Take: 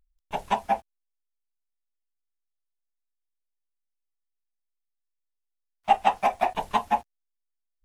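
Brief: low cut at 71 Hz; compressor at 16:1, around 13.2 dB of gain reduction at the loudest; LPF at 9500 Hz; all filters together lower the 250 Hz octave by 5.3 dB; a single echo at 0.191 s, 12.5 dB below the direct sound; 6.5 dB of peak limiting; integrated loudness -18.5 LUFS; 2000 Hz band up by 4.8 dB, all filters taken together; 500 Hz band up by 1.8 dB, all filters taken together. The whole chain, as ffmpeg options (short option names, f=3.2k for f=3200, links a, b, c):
-af "highpass=71,lowpass=9.5k,equalizer=f=250:t=o:g=-7.5,equalizer=f=500:t=o:g=3.5,equalizer=f=2k:t=o:g=6,acompressor=threshold=-26dB:ratio=16,alimiter=limit=-22dB:level=0:latency=1,aecho=1:1:191:0.237,volume=18dB"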